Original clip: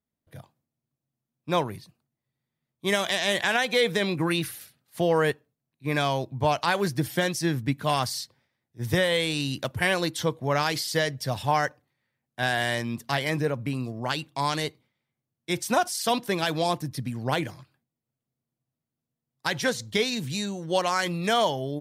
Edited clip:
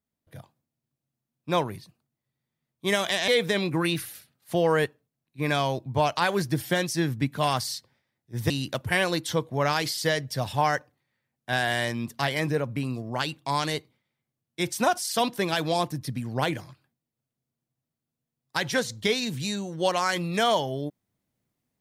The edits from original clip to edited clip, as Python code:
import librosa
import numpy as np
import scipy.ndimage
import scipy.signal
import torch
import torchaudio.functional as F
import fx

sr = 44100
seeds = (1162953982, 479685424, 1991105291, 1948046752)

y = fx.edit(x, sr, fx.cut(start_s=3.28, length_s=0.46),
    fx.cut(start_s=8.96, length_s=0.44), tone=tone)